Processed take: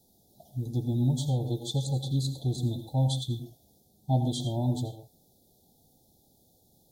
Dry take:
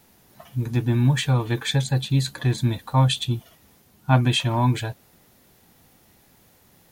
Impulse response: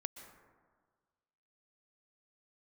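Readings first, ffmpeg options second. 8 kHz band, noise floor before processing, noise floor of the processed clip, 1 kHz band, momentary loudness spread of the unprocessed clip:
-7.0 dB, -57 dBFS, -65 dBFS, -12.5 dB, 10 LU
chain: -filter_complex "[0:a]asuperstop=centerf=1700:order=20:qfactor=0.65[a];[1:a]atrim=start_sample=2205,afade=t=out:st=0.31:d=0.01,atrim=end_sample=14112,asetrate=70560,aresample=44100[b];[a][b]afir=irnorm=-1:irlink=0"

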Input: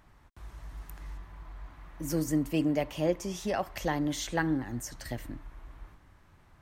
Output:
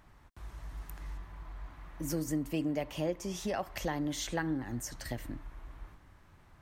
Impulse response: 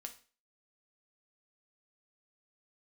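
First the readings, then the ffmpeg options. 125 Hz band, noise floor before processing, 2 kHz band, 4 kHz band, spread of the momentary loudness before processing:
-3.5 dB, -60 dBFS, -4.5 dB, -2.0 dB, 19 LU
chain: -af "acompressor=threshold=-33dB:ratio=2"

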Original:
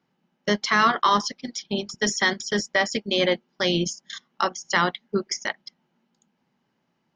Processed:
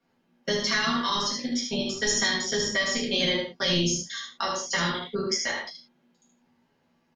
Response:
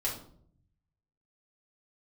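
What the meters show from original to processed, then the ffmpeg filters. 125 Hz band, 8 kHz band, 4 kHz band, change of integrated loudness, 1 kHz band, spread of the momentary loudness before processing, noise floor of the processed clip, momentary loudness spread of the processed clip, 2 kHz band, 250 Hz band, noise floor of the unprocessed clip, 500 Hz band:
-0.5 dB, +3.0 dB, +1.5 dB, -2.0 dB, -8.0 dB, 12 LU, -70 dBFS, 7 LU, -3.0 dB, -2.0 dB, -74 dBFS, -3.5 dB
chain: -filter_complex "[0:a]aecho=1:1:12|75:0.531|0.562[a];[1:a]atrim=start_sample=2205,afade=t=out:st=0.15:d=0.01,atrim=end_sample=7056,asetrate=37044,aresample=44100[b];[a][b]afir=irnorm=-1:irlink=0,acrossover=split=210|3000[c][d][e];[d]acompressor=threshold=-24dB:ratio=6[f];[c][f][e]amix=inputs=3:normalize=0,volume=-4dB"

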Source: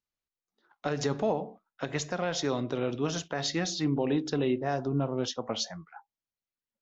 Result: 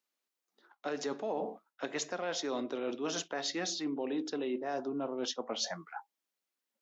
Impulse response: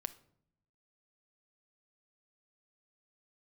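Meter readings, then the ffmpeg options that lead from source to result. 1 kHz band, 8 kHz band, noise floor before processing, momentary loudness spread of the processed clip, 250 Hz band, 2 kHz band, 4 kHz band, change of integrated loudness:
-4.5 dB, n/a, under -85 dBFS, 7 LU, -6.5 dB, -4.0 dB, -3.0 dB, -5.5 dB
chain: -af "highpass=f=240:w=0.5412,highpass=f=240:w=1.3066,areverse,acompressor=threshold=-39dB:ratio=5,areverse,volume=5.5dB"

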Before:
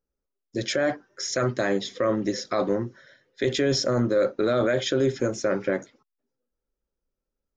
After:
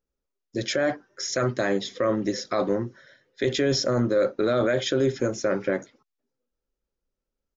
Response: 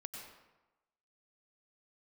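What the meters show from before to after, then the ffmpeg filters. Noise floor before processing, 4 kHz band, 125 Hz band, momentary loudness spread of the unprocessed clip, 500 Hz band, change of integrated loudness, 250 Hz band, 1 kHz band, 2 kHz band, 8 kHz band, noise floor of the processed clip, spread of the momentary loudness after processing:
-85 dBFS, 0.0 dB, 0.0 dB, 6 LU, 0.0 dB, 0.0 dB, 0.0 dB, 0.0 dB, 0.0 dB, 0.0 dB, -85 dBFS, 6 LU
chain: -af "aresample=16000,aresample=44100"

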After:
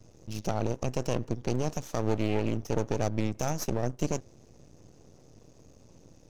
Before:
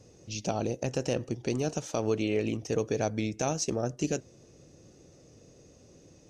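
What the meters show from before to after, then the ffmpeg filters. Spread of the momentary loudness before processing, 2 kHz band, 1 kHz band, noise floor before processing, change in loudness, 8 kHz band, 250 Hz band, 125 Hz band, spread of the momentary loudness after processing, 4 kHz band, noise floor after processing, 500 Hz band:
4 LU, -2.0 dB, +1.0 dB, -57 dBFS, -0.5 dB, -3.5 dB, 0.0 dB, +3.0 dB, 4 LU, -3.0 dB, -57 dBFS, -1.5 dB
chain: -af "lowshelf=f=230:g=8.5,aeval=exprs='max(val(0),0)':c=same"

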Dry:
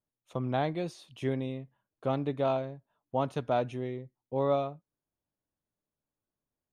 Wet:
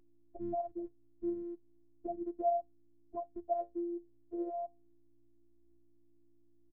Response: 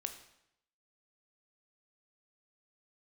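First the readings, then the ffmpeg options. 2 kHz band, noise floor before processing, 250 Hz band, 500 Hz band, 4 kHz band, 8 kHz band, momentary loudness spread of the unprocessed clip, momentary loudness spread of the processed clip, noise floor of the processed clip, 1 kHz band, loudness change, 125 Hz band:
under -35 dB, under -85 dBFS, -5.5 dB, -7.0 dB, under -35 dB, n/a, 11 LU, 13 LU, -64 dBFS, -4.5 dB, -6.5 dB, under -25 dB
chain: -af "acompressor=threshold=-47dB:ratio=2,afftfilt=real='re*gte(hypot(re,im),0.0562)':imag='im*gte(hypot(re,im),0.0562)':win_size=1024:overlap=0.75,alimiter=level_in=14dB:limit=-24dB:level=0:latency=1:release=221,volume=-14dB,aeval=exprs='val(0)+0.000316*(sin(2*PI*60*n/s)+sin(2*PI*2*60*n/s)/2+sin(2*PI*3*60*n/s)/3+sin(2*PI*4*60*n/s)/4+sin(2*PI*5*60*n/s)/5)':c=same,lowpass=f=3.8k:w=0.5412,lowpass=f=3.8k:w=1.3066,aecho=1:1:4.7:0.58,flanger=delay=6.8:depth=5.9:regen=74:speed=0.32:shape=sinusoidal,afftfilt=real='hypot(re,im)*cos(PI*b)':imag='0':win_size=512:overlap=0.75,volume=16.5dB"

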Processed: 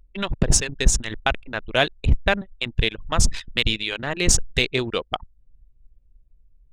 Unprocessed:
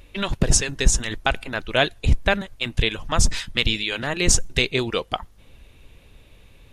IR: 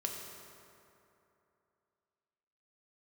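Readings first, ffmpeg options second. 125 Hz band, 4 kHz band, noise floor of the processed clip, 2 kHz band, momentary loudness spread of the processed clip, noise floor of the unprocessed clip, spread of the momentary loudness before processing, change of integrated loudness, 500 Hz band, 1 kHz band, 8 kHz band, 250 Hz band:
-0.5 dB, -0.5 dB, -58 dBFS, -0.5 dB, 8 LU, -51 dBFS, 8 LU, -0.5 dB, -0.5 dB, -0.5 dB, -0.5 dB, -1.0 dB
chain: -af "anlmdn=158,aeval=exprs='0.75*(cos(1*acos(clip(val(0)/0.75,-1,1)))-cos(1*PI/2))+0.0106*(cos(7*acos(clip(val(0)/0.75,-1,1)))-cos(7*PI/2))':c=same"

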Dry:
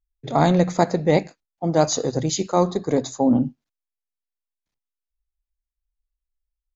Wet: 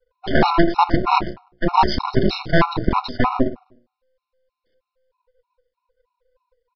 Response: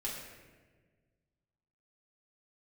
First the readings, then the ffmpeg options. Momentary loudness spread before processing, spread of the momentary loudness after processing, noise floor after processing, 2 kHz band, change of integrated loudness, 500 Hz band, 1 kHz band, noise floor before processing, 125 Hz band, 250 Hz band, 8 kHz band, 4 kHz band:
6 LU, 6 LU, -85 dBFS, +9.5 dB, +1.5 dB, -2.0 dB, +7.0 dB, under -85 dBFS, -1.0 dB, -0.5 dB, n/a, +4.5 dB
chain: -filter_complex "[0:a]afftfilt=real='real(if(between(b,1,1008),(2*floor((b-1)/24)+1)*24-b,b),0)':imag='imag(if(between(b,1,1008),(2*floor((b-1)/24)+1)*24-b,b),0)*if(between(b,1,1008),-1,1)':win_size=2048:overlap=0.75,bandreject=f=60:t=h:w=6,bandreject=f=120:t=h:w=6,bandreject=f=180:t=h:w=6,bandreject=f=240:t=h:w=6,bandreject=f=300:t=h:w=6,bandreject=f=360:t=h:w=6,bandreject=f=420:t=h:w=6,bandreject=f=480:t=h:w=6,asplit=2[a][b];[b]acompressor=threshold=-32dB:ratio=8,volume=2.5dB[c];[a][c]amix=inputs=2:normalize=0,asplit=2[d][e];[e]adelay=100,lowpass=f=1.2k:p=1,volume=-16.5dB,asplit=2[f][g];[g]adelay=100,lowpass=f=1.2k:p=1,volume=0.31,asplit=2[h][i];[i]adelay=100,lowpass=f=1.2k:p=1,volume=0.31[j];[d][f][h][j]amix=inputs=4:normalize=0,acontrast=29,aresample=11025,aeval=exprs='max(val(0),0)':c=same,aresample=44100,afftfilt=real='re*gt(sin(2*PI*3.2*pts/sr)*(1-2*mod(floor(b*sr/1024/730),2)),0)':imag='im*gt(sin(2*PI*3.2*pts/sr)*(1-2*mod(floor(b*sr/1024/730),2)),0)':win_size=1024:overlap=0.75,volume=4.5dB"

